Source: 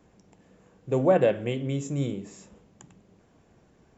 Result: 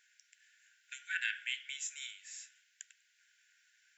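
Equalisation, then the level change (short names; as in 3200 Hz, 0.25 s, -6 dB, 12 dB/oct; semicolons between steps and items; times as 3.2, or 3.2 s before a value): brick-wall FIR high-pass 1400 Hz; +3.0 dB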